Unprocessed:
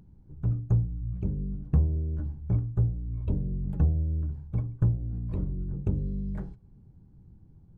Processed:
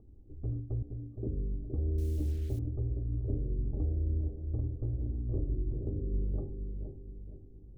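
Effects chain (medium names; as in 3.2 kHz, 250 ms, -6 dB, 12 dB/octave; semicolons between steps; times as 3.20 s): 0.82–1.27 s: Chebyshev high-pass 160 Hz, order 6; peak limiter -24.5 dBFS, peak gain reduction 11 dB; rippled Chebyshev low-pass 1.2 kHz, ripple 3 dB; 1.98–2.59 s: word length cut 10-bit, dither none; static phaser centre 410 Hz, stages 4; bucket-brigade echo 468 ms, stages 2048, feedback 43%, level -6 dB; trim +4.5 dB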